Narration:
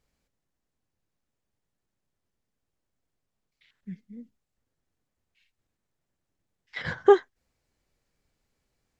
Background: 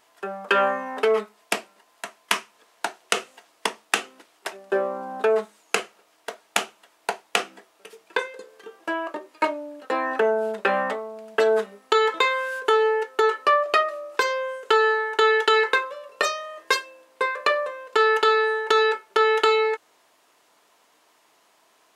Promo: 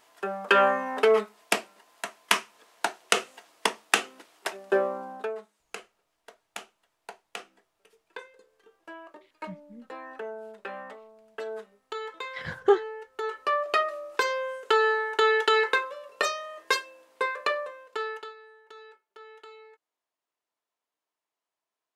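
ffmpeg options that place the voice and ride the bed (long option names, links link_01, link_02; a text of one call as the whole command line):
ffmpeg -i stem1.wav -i stem2.wav -filter_complex "[0:a]adelay=5600,volume=-3.5dB[link_01];[1:a]volume=13dB,afade=type=out:start_time=4.72:duration=0.63:silence=0.149624,afade=type=in:start_time=13.1:duration=0.79:silence=0.223872,afade=type=out:start_time=17.18:duration=1.16:silence=0.0501187[link_02];[link_01][link_02]amix=inputs=2:normalize=0" out.wav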